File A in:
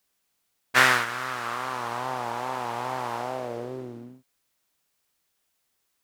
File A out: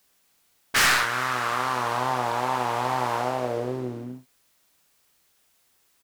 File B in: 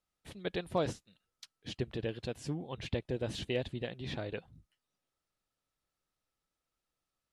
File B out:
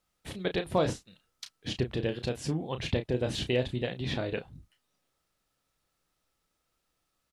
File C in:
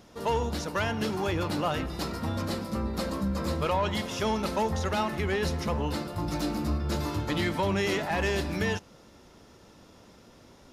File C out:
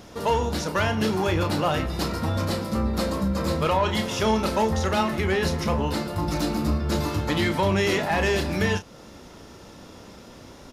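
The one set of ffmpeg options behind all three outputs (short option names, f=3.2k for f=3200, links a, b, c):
-filter_complex "[0:a]asplit=2[a][b];[b]acompressor=threshold=-42dB:ratio=6,volume=-2dB[c];[a][c]amix=inputs=2:normalize=0,aeval=exprs='0.133*(abs(mod(val(0)/0.133+3,4)-2)-1)':c=same,asplit=2[d][e];[e]adelay=32,volume=-9dB[f];[d][f]amix=inputs=2:normalize=0,volume=3.5dB"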